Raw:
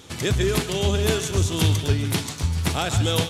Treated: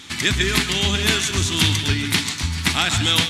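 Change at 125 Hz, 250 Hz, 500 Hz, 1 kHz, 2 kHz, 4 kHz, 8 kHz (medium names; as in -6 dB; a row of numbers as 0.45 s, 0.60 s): -2.0 dB, +1.5 dB, -5.0 dB, +3.0 dB, +10.0 dB, +9.5 dB, +5.5 dB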